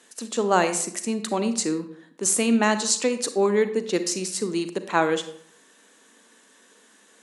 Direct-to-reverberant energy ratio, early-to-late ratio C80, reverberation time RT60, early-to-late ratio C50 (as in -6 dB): 10.0 dB, 14.5 dB, 0.60 s, 11.5 dB